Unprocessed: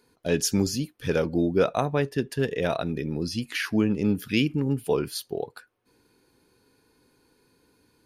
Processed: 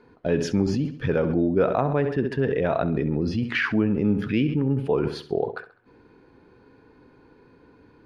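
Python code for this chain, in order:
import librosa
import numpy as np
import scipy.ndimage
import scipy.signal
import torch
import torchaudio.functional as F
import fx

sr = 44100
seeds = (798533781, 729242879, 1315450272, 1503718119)

p1 = scipy.signal.sosfilt(scipy.signal.butter(2, 1800.0, 'lowpass', fs=sr, output='sos'), x)
p2 = fx.echo_feedback(p1, sr, ms=67, feedback_pct=42, wet_db=-15)
p3 = fx.over_compress(p2, sr, threshold_db=-34.0, ratio=-1.0)
y = p2 + (p3 * 10.0 ** (1.0 / 20.0))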